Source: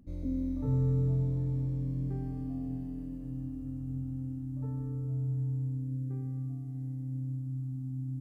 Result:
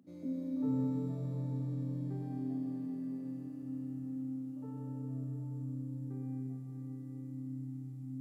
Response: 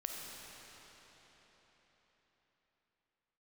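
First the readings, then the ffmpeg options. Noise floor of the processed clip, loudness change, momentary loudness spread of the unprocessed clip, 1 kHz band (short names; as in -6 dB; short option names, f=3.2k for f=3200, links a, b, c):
-45 dBFS, -5.0 dB, 9 LU, n/a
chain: -filter_complex "[0:a]highpass=f=170:w=0.5412,highpass=f=170:w=1.3066[a];[1:a]atrim=start_sample=2205[b];[a][b]afir=irnorm=-1:irlink=0"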